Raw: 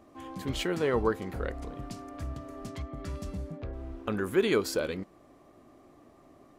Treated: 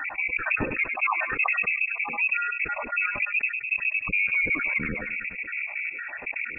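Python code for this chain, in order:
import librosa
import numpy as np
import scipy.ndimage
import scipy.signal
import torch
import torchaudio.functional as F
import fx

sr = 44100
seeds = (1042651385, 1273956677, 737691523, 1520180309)

y = fx.spec_dropout(x, sr, seeds[0], share_pct=64)
y = np.repeat(y[::4], 4)[:len(y)]
y = 10.0 ** (-29.0 / 20.0) * np.tanh(y / 10.0 ** (-29.0 / 20.0))
y = fx.mod_noise(y, sr, seeds[1], snr_db=12)
y = fx.low_shelf(y, sr, hz=180.0, db=6.5)
y = fx.echo_feedback(y, sr, ms=102, feedback_pct=52, wet_db=-18.5)
y = fx.spec_gate(y, sr, threshold_db=-20, keep='strong')
y = fx.peak_eq(y, sr, hz=1400.0, db=fx.steps((0.0, 6.0), (3.23, -10.0)), octaves=1.4)
y = fx.freq_invert(y, sr, carrier_hz=2600)
y = fx.env_flatten(y, sr, amount_pct=70)
y = y * librosa.db_to_amplitude(6.0)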